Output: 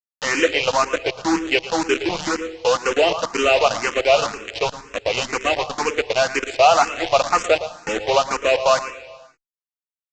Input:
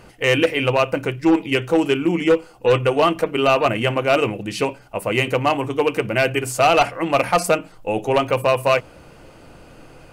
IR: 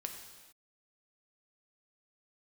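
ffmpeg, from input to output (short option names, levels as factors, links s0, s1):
-filter_complex "[0:a]highpass=420,acrusher=bits=3:mix=0:aa=0.000001,asplit=2[s0][s1];[1:a]atrim=start_sample=2205,lowshelf=f=160:g=6.5,adelay=113[s2];[s1][s2]afir=irnorm=-1:irlink=0,volume=0.316[s3];[s0][s3]amix=inputs=2:normalize=0,aresample=16000,aresample=44100,asplit=2[s4][s5];[s5]afreqshift=2[s6];[s4][s6]amix=inputs=2:normalize=1,volume=1.5"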